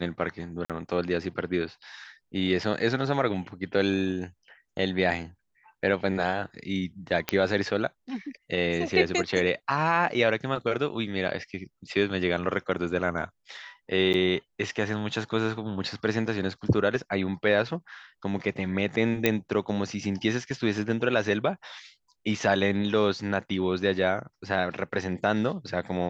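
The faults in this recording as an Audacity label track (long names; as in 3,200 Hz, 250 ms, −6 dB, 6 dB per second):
0.650000	0.700000	drop-out 47 ms
7.290000	7.290000	click −9 dBFS
14.130000	14.140000	drop-out 9.5 ms
19.260000	19.260000	click −7 dBFS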